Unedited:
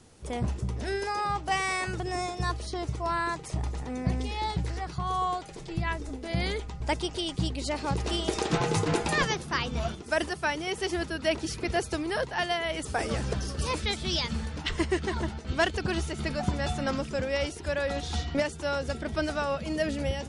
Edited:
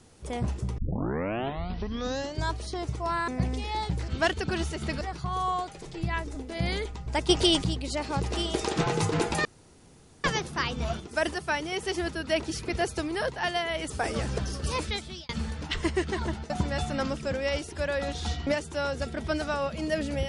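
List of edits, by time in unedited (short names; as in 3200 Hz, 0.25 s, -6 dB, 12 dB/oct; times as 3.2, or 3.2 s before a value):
0.78 tape start 1.85 s
3.28–3.95 cut
7.03–7.38 gain +10 dB
9.19 insert room tone 0.79 s
13.78–14.24 fade out
15.45–16.38 move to 4.75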